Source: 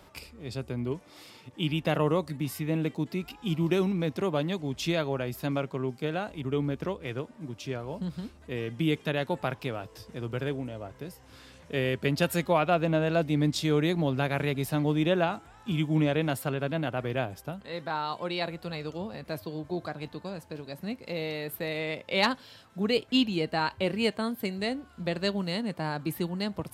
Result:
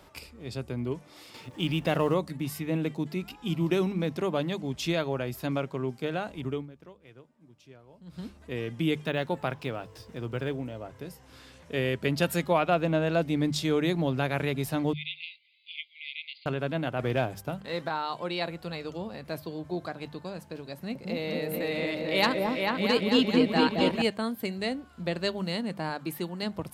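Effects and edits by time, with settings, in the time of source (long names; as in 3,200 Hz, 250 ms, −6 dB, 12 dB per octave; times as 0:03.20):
0:01.34–0:02.14: mu-law and A-law mismatch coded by mu
0:06.48–0:08.24: duck −17.5 dB, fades 0.19 s
0:09.04–0:10.85: linearly interpolated sample-rate reduction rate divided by 2×
0:14.93–0:16.46: linear-phase brick-wall band-pass 2,000–4,900 Hz
0:16.99–0:17.89: leveller curve on the samples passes 1
0:20.73–0:24.02: echo whose low-pass opens from repeat to repeat 221 ms, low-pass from 750 Hz, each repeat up 2 octaves, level 0 dB
0:25.89–0:26.43: low-shelf EQ 140 Hz −11 dB
whole clip: mains-hum notches 50/100/150/200 Hz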